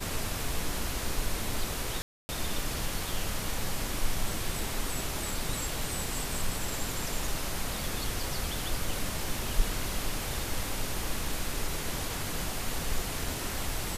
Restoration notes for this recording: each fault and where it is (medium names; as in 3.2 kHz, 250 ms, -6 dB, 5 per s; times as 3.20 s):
2.02–2.29 s: dropout 270 ms